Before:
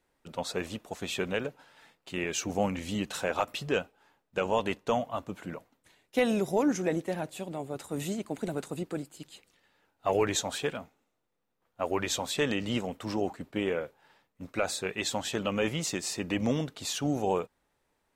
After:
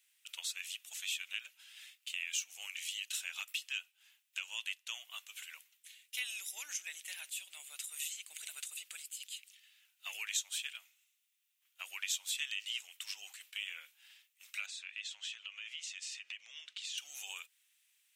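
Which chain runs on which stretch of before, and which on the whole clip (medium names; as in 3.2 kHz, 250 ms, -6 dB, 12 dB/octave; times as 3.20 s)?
14.66–16.98 s: compression 4:1, threshold -37 dBFS + distance through air 120 m
whole clip: Chebyshev high-pass 2.8 kHz, order 3; peaking EQ 4.4 kHz -7 dB 0.78 oct; compression 2:1, threshold -57 dBFS; trim +13 dB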